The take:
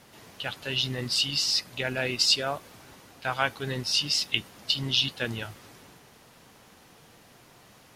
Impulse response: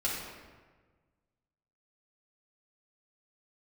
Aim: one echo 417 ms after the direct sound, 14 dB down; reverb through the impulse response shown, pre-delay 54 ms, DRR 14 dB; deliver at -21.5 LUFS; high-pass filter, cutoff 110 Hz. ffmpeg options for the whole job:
-filter_complex "[0:a]highpass=110,aecho=1:1:417:0.2,asplit=2[s0][s1];[1:a]atrim=start_sample=2205,adelay=54[s2];[s1][s2]afir=irnorm=-1:irlink=0,volume=0.0944[s3];[s0][s3]amix=inputs=2:normalize=0,volume=1.78"

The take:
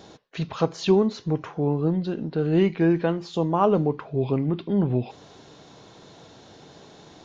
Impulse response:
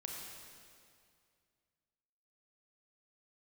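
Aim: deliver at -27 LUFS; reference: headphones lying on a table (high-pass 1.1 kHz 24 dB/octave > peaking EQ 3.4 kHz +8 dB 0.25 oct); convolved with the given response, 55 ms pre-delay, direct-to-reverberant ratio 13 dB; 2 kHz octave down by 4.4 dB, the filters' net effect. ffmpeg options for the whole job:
-filter_complex "[0:a]equalizer=f=2000:t=o:g=-6.5,asplit=2[s0][s1];[1:a]atrim=start_sample=2205,adelay=55[s2];[s1][s2]afir=irnorm=-1:irlink=0,volume=0.266[s3];[s0][s3]amix=inputs=2:normalize=0,highpass=f=1100:w=0.5412,highpass=f=1100:w=1.3066,equalizer=f=3400:t=o:w=0.25:g=8,volume=4.22"

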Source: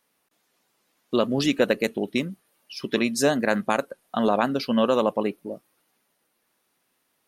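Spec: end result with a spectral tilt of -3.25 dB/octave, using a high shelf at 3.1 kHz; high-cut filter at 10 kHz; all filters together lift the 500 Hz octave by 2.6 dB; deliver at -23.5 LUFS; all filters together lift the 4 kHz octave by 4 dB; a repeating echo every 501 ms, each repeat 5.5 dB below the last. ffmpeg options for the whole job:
-af "lowpass=10000,equalizer=f=500:t=o:g=3,highshelf=f=3100:g=-4,equalizer=f=4000:t=o:g=8,aecho=1:1:501|1002|1503|2004|2505|3006|3507:0.531|0.281|0.149|0.079|0.0419|0.0222|0.0118,volume=0.841"

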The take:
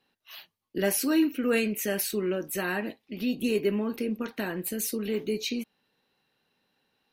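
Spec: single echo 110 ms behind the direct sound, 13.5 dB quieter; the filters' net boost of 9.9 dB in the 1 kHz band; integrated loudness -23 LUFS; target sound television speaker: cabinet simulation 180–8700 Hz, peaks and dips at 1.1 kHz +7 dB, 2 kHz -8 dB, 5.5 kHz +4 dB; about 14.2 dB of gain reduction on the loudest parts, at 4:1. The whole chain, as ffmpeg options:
-af "equalizer=f=1000:t=o:g=9,acompressor=threshold=0.0141:ratio=4,highpass=f=180:w=0.5412,highpass=f=180:w=1.3066,equalizer=f=1100:t=q:w=4:g=7,equalizer=f=2000:t=q:w=4:g=-8,equalizer=f=5500:t=q:w=4:g=4,lowpass=f=8700:w=0.5412,lowpass=f=8700:w=1.3066,aecho=1:1:110:0.211,volume=6.68"

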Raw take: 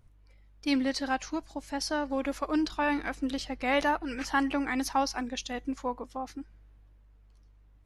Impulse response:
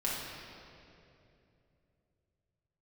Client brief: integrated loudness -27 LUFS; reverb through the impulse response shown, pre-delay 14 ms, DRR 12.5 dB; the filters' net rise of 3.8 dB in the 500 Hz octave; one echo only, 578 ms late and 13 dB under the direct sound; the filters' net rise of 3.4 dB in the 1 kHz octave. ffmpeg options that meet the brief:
-filter_complex "[0:a]equalizer=f=500:t=o:g=3.5,equalizer=f=1000:t=o:g=3,aecho=1:1:578:0.224,asplit=2[s0][s1];[1:a]atrim=start_sample=2205,adelay=14[s2];[s1][s2]afir=irnorm=-1:irlink=0,volume=0.119[s3];[s0][s3]amix=inputs=2:normalize=0,volume=1.19"

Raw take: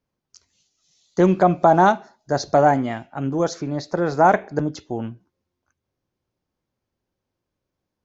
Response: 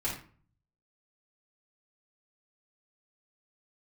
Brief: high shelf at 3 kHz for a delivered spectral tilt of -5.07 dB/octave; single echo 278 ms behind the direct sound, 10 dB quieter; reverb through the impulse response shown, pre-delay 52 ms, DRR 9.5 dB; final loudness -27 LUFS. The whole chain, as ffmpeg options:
-filter_complex "[0:a]highshelf=f=3000:g=7.5,aecho=1:1:278:0.316,asplit=2[s0][s1];[1:a]atrim=start_sample=2205,adelay=52[s2];[s1][s2]afir=irnorm=-1:irlink=0,volume=0.178[s3];[s0][s3]amix=inputs=2:normalize=0,volume=0.376"

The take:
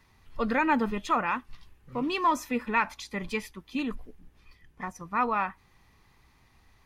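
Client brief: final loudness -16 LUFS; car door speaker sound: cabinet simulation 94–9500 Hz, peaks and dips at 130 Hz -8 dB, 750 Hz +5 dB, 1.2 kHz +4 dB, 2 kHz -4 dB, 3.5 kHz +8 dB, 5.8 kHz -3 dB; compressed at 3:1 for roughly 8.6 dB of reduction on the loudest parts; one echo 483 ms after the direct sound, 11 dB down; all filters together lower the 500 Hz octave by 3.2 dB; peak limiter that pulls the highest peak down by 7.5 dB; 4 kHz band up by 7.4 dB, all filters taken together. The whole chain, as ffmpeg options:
-af "equalizer=f=500:t=o:g=-5,equalizer=f=4000:t=o:g=3.5,acompressor=threshold=0.0224:ratio=3,alimiter=level_in=1.78:limit=0.0631:level=0:latency=1,volume=0.562,highpass=94,equalizer=f=130:t=q:w=4:g=-8,equalizer=f=750:t=q:w=4:g=5,equalizer=f=1200:t=q:w=4:g=4,equalizer=f=2000:t=q:w=4:g=-4,equalizer=f=3500:t=q:w=4:g=8,equalizer=f=5800:t=q:w=4:g=-3,lowpass=f=9500:w=0.5412,lowpass=f=9500:w=1.3066,aecho=1:1:483:0.282,volume=13.3"

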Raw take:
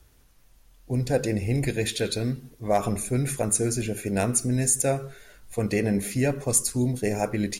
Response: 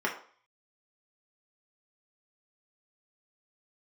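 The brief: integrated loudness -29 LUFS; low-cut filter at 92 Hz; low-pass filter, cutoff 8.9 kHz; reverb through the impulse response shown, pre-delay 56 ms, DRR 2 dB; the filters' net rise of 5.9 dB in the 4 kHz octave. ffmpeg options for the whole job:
-filter_complex "[0:a]highpass=92,lowpass=8900,equalizer=f=4000:t=o:g=7,asplit=2[s0][s1];[1:a]atrim=start_sample=2205,adelay=56[s2];[s1][s2]afir=irnorm=-1:irlink=0,volume=0.266[s3];[s0][s3]amix=inputs=2:normalize=0,volume=0.596"

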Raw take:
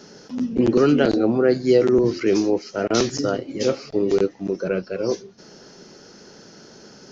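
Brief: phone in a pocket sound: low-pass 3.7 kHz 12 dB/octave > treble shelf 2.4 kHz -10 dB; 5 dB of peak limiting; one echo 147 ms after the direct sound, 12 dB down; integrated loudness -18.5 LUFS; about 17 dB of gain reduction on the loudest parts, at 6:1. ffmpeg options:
-af "acompressor=threshold=0.0282:ratio=6,alimiter=level_in=1.19:limit=0.0631:level=0:latency=1,volume=0.841,lowpass=3700,highshelf=f=2400:g=-10,aecho=1:1:147:0.251,volume=7.94"

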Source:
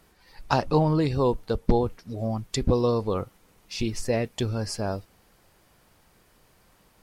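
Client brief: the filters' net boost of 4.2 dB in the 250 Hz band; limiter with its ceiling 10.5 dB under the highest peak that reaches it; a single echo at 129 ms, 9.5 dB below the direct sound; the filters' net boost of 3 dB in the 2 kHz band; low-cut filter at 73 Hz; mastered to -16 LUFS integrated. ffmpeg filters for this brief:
-af "highpass=73,equalizer=f=250:t=o:g=5.5,equalizer=f=2000:t=o:g=4,alimiter=limit=0.224:level=0:latency=1,aecho=1:1:129:0.335,volume=2.82"

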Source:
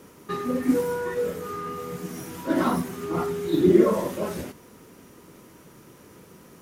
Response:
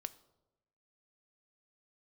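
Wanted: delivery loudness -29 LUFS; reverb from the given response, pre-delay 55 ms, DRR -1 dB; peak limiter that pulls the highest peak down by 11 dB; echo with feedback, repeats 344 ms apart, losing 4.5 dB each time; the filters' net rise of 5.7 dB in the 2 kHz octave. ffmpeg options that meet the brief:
-filter_complex "[0:a]equalizer=f=2000:t=o:g=7.5,alimiter=limit=0.141:level=0:latency=1,aecho=1:1:344|688|1032|1376|1720|2064|2408|2752|3096:0.596|0.357|0.214|0.129|0.0772|0.0463|0.0278|0.0167|0.01,asplit=2[s0][s1];[1:a]atrim=start_sample=2205,adelay=55[s2];[s1][s2]afir=irnorm=-1:irlink=0,volume=1.58[s3];[s0][s3]amix=inputs=2:normalize=0,volume=0.531"

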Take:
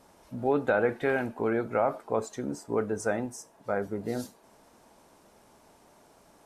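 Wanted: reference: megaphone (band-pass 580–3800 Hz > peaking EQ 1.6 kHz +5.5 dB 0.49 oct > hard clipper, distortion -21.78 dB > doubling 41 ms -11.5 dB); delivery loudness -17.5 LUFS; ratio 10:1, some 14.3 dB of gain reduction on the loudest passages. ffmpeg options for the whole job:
-filter_complex "[0:a]acompressor=threshold=0.0178:ratio=10,highpass=580,lowpass=3800,equalizer=f=1600:t=o:w=0.49:g=5.5,asoftclip=type=hard:threshold=0.0266,asplit=2[s0][s1];[s1]adelay=41,volume=0.266[s2];[s0][s2]amix=inputs=2:normalize=0,volume=22.4"

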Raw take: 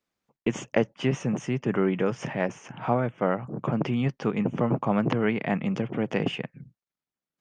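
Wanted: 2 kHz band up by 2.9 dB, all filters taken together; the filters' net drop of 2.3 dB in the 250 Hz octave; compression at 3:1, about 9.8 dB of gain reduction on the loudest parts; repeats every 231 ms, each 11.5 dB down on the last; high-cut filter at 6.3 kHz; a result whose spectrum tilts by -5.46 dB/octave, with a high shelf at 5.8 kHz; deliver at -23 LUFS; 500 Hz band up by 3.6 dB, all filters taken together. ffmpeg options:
-af "lowpass=6300,equalizer=f=250:t=o:g=-4.5,equalizer=f=500:t=o:g=5.5,equalizer=f=2000:t=o:g=4,highshelf=f=5800:g=-5.5,acompressor=threshold=0.0447:ratio=3,aecho=1:1:231|462|693:0.266|0.0718|0.0194,volume=2.82"

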